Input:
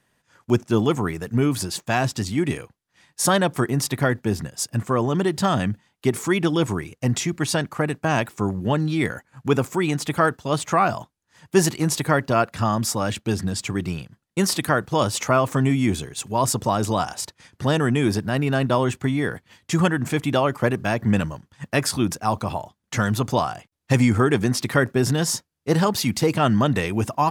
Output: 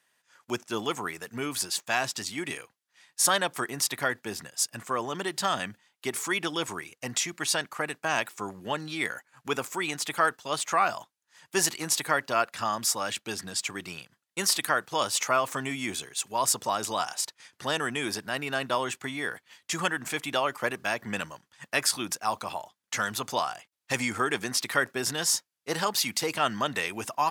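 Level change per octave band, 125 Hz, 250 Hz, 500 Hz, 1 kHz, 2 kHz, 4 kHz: -20.0, -15.0, -9.5, -4.5, -2.0, -0.5 dB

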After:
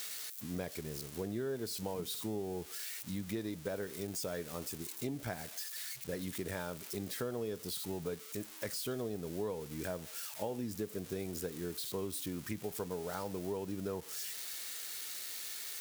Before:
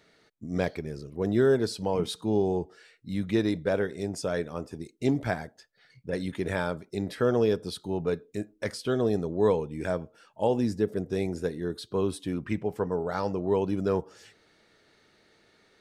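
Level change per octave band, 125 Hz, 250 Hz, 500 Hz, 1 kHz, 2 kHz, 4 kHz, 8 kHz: -11.0, -11.5, -12.5, -11.5, -9.5, -2.5, +5.0 dB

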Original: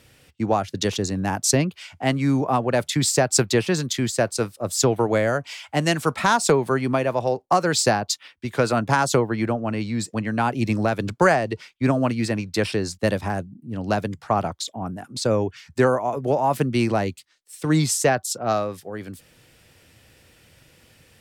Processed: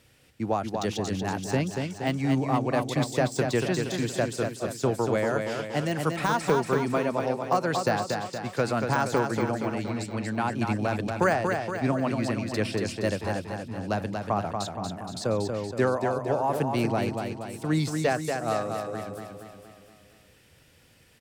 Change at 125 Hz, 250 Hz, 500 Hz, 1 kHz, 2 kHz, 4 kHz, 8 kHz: -4.5, -4.5, -4.5, -4.5, -5.0, -8.5, -13.5 dB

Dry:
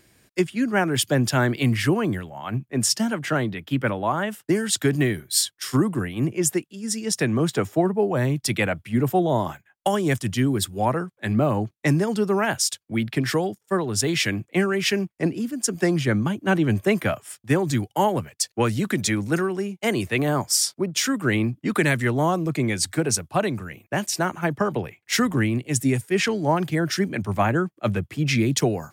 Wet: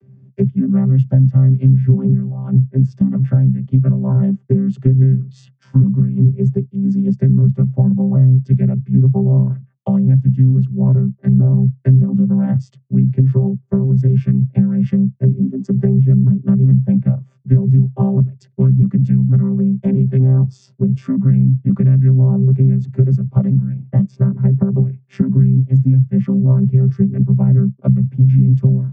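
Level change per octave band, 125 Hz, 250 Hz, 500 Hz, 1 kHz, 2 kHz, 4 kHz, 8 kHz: +16.0 dB, +8.5 dB, -3.0 dB, under -10 dB, under -20 dB, under -25 dB, under -30 dB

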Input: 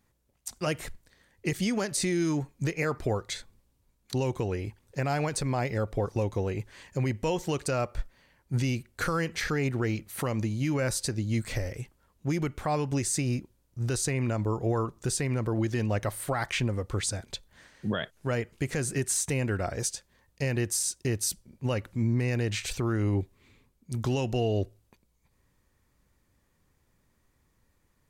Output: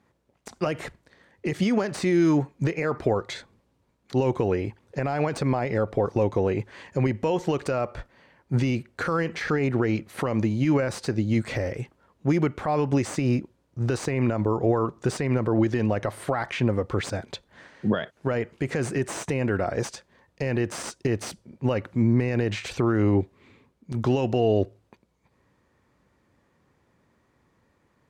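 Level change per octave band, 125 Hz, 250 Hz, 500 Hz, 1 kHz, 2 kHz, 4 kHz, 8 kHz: +2.5, +6.5, +6.5, +4.5, +2.5, -1.5, -8.5 dB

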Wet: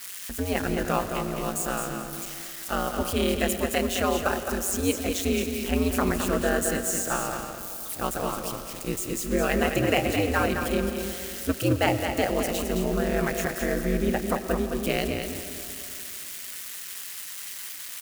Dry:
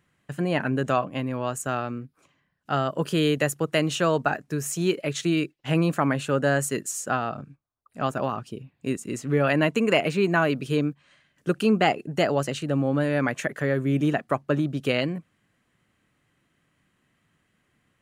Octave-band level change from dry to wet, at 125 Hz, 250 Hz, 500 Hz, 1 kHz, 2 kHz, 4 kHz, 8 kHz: -4.5, -2.0, -1.5, -1.5, -1.5, 0.0, +5.0 dB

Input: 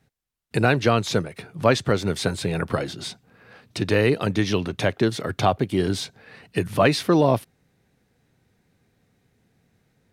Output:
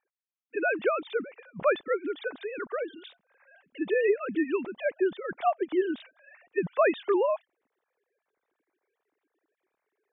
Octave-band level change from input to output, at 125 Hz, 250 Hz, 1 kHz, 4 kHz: -26.0, -9.0, -6.5, -17.0 dB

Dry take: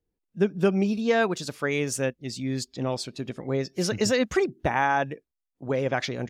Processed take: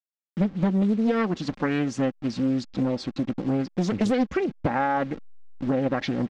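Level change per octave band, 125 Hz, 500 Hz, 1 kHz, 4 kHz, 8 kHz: +2.0, -2.5, -0.5, -5.0, -11.5 dB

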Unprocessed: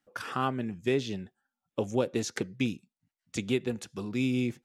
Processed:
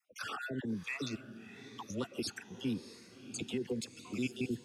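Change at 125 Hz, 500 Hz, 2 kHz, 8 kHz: -9.5, -10.5, -4.5, -3.5 dB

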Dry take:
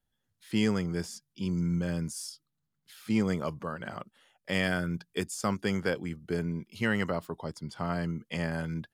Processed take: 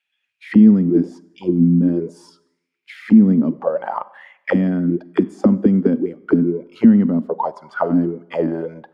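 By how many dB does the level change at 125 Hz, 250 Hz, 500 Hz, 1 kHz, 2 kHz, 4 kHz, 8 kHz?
+11.0 dB, +17.5 dB, +12.5 dB, +11.0 dB, +1.5 dB, n/a, under -10 dB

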